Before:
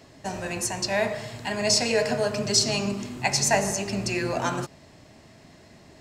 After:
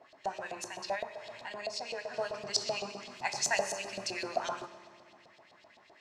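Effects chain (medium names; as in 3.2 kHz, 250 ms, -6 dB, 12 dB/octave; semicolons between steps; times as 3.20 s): dynamic bell 2.1 kHz, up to -6 dB, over -41 dBFS, Q 0.97; LFO band-pass saw up 7.8 Hz 600–4300 Hz; 3.08–4.27 s: treble shelf 4.2 kHz +8.5 dB; reverberation RT60 2.2 s, pre-delay 3 ms, DRR 11.5 dB; 0.95–2.14 s: compression 2:1, threshold -42 dBFS, peak gain reduction 9.5 dB; trim +1.5 dB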